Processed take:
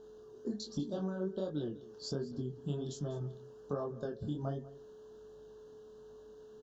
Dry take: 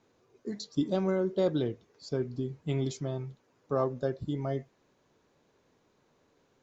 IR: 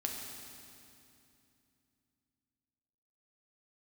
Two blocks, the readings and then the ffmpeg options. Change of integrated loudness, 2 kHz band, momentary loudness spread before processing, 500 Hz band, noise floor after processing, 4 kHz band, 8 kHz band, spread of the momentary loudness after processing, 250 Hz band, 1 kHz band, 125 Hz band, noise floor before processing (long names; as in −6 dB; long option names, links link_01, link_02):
−7.0 dB, −10.0 dB, 11 LU, −8.0 dB, −54 dBFS, −3.5 dB, can't be measured, 17 LU, −6.5 dB, −9.0 dB, −5.5 dB, −70 dBFS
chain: -filter_complex "[0:a]equalizer=frequency=220:width=7.7:gain=8.5,acompressor=threshold=-39dB:ratio=6,aeval=exprs='val(0)+0.000158*(sin(2*PI*50*n/s)+sin(2*PI*2*50*n/s)/2+sin(2*PI*3*50*n/s)/3+sin(2*PI*4*50*n/s)/4+sin(2*PI*5*50*n/s)/5)':channel_layout=same,flanger=delay=20:depth=7.8:speed=1.3,aeval=exprs='val(0)+0.00126*sin(2*PI*430*n/s)':channel_layout=same,asuperstop=centerf=2200:order=8:qfactor=2.1,asplit=2[link_01][link_02];[link_02]aecho=0:1:196:0.119[link_03];[link_01][link_03]amix=inputs=2:normalize=0,volume=7dB"